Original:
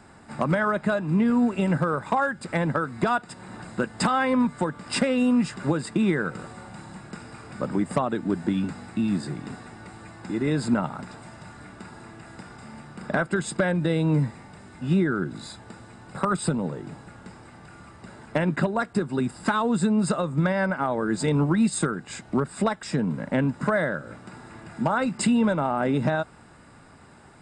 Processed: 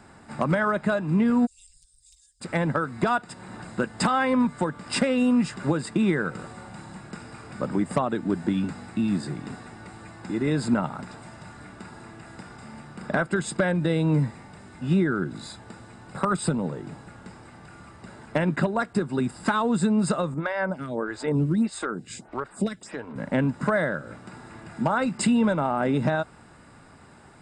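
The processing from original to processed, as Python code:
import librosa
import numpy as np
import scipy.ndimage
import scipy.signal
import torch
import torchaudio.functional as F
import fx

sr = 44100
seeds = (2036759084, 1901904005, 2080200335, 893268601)

y = fx.cheby2_bandstop(x, sr, low_hz=180.0, high_hz=1400.0, order=4, stop_db=70, at=(1.45, 2.4), fade=0.02)
y = fx.stagger_phaser(y, sr, hz=1.6, at=(20.34, 23.16))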